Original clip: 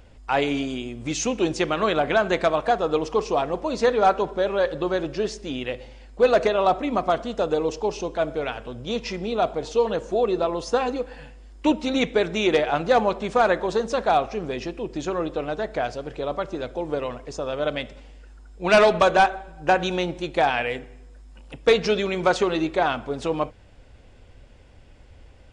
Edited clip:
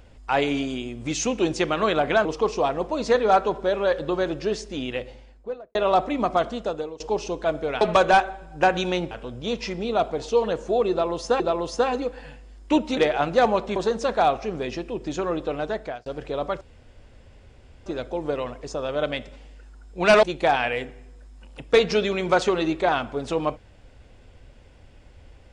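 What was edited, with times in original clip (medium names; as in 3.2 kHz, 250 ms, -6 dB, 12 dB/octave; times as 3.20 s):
2.25–2.98 s: delete
5.68–6.48 s: studio fade out
7.24–7.73 s: fade out, to -22 dB
10.34–10.83 s: loop, 2 plays
11.91–12.50 s: delete
13.29–13.65 s: delete
15.62–15.95 s: fade out
16.50 s: insert room tone 1.25 s
18.87–20.17 s: move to 8.54 s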